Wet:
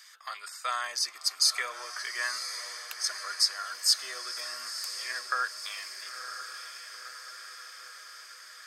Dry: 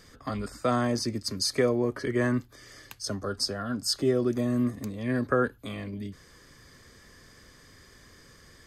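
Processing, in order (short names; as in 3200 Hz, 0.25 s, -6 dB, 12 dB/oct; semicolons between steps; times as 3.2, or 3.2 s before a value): Bessel high-pass 1600 Hz, order 4; diffused feedback echo 0.998 s, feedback 62%, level -9 dB; gain +5 dB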